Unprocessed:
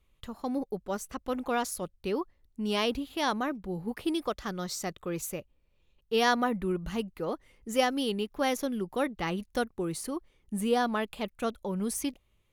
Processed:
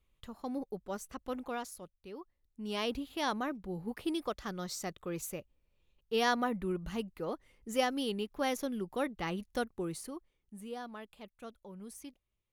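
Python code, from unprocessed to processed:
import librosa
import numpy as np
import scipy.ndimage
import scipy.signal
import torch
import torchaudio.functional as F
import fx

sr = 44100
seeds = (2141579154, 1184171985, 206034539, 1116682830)

y = fx.gain(x, sr, db=fx.line((1.33, -6.0), (2.07, -16.5), (2.96, -4.5), (9.86, -4.5), (10.55, -16.0)))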